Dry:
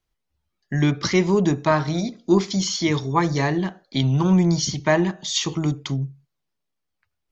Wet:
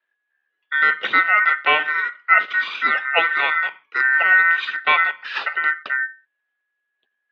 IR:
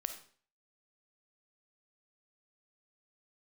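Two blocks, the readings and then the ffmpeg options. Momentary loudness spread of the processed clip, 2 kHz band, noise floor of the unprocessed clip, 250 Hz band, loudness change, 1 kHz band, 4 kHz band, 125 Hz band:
10 LU, +16.5 dB, -79 dBFS, under -20 dB, +4.0 dB, +6.5 dB, -0.5 dB, under -35 dB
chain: -af "aeval=exprs='val(0)*sin(2*PI*1800*n/s)':c=same,highpass=f=440:t=q:w=0.5412,highpass=f=440:t=q:w=1.307,lowpass=f=3.6k:t=q:w=0.5176,lowpass=f=3.6k:t=q:w=0.7071,lowpass=f=3.6k:t=q:w=1.932,afreqshift=-120,volume=5dB"

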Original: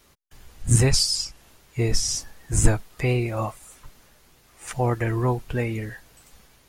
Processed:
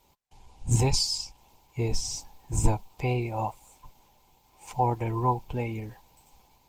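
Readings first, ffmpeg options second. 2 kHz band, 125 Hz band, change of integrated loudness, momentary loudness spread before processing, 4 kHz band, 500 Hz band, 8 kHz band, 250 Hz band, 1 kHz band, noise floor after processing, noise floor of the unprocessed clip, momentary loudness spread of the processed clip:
-9.5 dB, -5.0 dB, -5.0 dB, 15 LU, -5.5 dB, -5.0 dB, -7.5 dB, -5.5 dB, +3.0 dB, -65 dBFS, -58 dBFS, 14 LU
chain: -af "superequalizer=9b=3.16:10b=0.355:11b=0.251:16b=0.316,volume=-5dB" -ar 48000 -c:a libopus -b:a 24k

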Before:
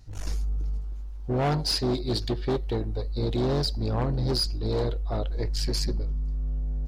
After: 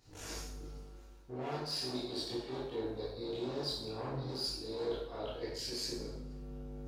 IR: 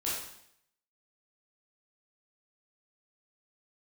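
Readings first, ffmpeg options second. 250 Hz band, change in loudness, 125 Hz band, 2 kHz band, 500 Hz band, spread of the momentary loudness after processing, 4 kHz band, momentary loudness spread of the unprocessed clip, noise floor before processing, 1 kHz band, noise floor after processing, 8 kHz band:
-11.5 dB, -11.5 dB, -18.0 dB, -8.5 dB, -9.0 dB, 10 LU, -8.5 dB, 7 LU, -36 dBFS, -11.0 dB, -54 dBFS, -7.5 dB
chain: -filter_complex "[0:a]highpass=f=310:p=1,areverse,acompressor=threshold=-37dB:ratio=6,areverse[a];[1:a]atrim=start_sample=2205[b];[a][b]afir=irnorm=-1:irlink=0,volume=-4dB"

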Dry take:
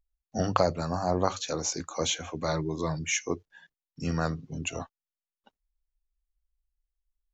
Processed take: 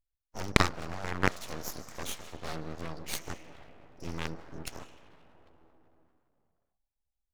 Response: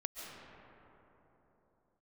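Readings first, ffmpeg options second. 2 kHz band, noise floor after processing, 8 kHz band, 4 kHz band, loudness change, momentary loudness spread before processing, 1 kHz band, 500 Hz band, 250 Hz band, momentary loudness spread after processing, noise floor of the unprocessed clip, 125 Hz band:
+1.5 dB, -85 dBFS, n/a, -4.5 dB, -5.0 dB, 10 LU, -5.5 dB, -9.5 dB, -6.0 dB, 18 LU, under -85 dBFS, -5.5 dB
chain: -filter_complex "[0:a]asplit=2[a][b];[1:a]atrim=start_sample=2205[c];[b][c]afir=irnorm=-1:irlink=0,volume=-6.5dB[d];[a][d]amix=inputs=2:normalize=0,aeval=exprs='0.75*(cos(1*acos(clip(val(0)/0.75,-1,1)))-cos(1*PI/2))+0.0596*(cos(5*acos(clip(val(0)/0.75,-1,1)))-cos(5*PI/2))+0.0944*(cos(6*acos(clip(val(0)/0.75,-1,1)))-cos(6*PI/2))+0.188*(cos(7*acos(clip(val(0)/0.75,-1,1)))-cos(7*PI/2))':c=same,aeval=exprs='abs(val(0))':c=same"

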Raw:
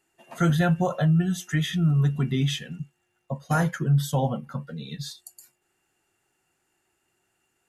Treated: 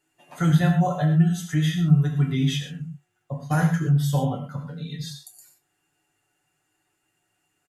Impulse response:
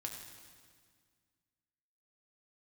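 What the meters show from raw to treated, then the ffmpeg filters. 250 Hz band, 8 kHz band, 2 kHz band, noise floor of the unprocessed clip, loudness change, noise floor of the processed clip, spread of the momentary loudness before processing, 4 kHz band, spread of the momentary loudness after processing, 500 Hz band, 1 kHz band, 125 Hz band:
+2.5 dB, 0.0 dB, -0.5 dB, -74 dBFS, +2.5 dB, -74 dBFS, 15 LU, 0.0 dB, 17 LU, -1.5 dB, +0.5 dB, +2.5 dB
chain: -filter_complex "[0:a]aecho=1:1:6.8:0.57[a];[1:a]atrim=start_sample=2205,atrim=end_sample=6174[b];[a][b]afir=irnorm=-1:irlink=0,volume=1dB"

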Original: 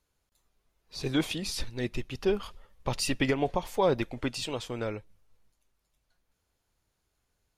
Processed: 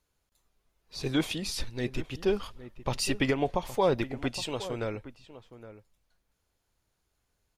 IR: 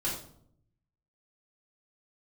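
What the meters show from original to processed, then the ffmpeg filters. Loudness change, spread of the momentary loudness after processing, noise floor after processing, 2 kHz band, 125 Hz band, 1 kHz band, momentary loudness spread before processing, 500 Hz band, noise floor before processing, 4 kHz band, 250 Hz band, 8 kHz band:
0.0 dB, 17 LU, -79 dBFS, 0.0 dB, +0.5 dB, 0.0 dB, 10 LU, 0.0 dB, -79 dBFS, 0.0 dB, 0.0 dB, 0.0 dB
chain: -filter_complex "[0:a]asplit=2[a][b];[b]adelay=816.3,volume=-14dB,highshelf=f=4k:g=-18.4[c];[a][c]amix=inputs=2:normalize=0"

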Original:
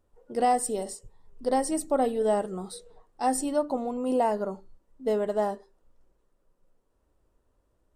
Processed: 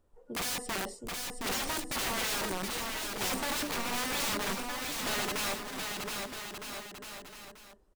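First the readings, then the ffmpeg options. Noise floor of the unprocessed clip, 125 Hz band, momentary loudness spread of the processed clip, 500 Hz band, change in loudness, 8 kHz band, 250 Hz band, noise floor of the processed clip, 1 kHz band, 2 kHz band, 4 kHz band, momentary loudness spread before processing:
-72 dBFS, n/a, 11 LU, -12.5 dB, -5.5 dB, +2.0 dB, -8.5 dB, -58 dBFS, -8.0 dB, +10.0 dB, +13.0 dB, 14 LU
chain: -filter_complex "[0:a]acrossover=split=4500[a][b];[b]acompressor=threshold=-48dB:ratio=4:attack=1:release=60[c];[a][c]amix=inputs=2:normalize=0,aeval=exprs='(mod(28.2*val(0)+1,2)-1)/28.2':c=same,aecho=1:1:720|1260|1665|1969|2197:0.631|0.398|0.251|0.158|0.1"

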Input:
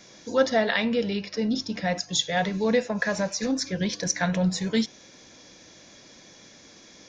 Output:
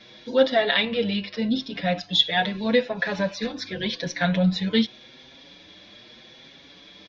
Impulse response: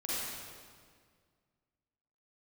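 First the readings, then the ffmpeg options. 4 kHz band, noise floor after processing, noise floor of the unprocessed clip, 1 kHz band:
+6.0 dB, -50 dBFS, -51 dBFS, +1.5 dB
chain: -filter_complex "[0:a]highshelf=f=5.2k:t=q:w=3:g=-14,asplit=2[a][b];[b]adelay=6.2,afreqshift=0.83[c];[a][c]amix=inputs=2:normalize=1,volume=3.5dB"

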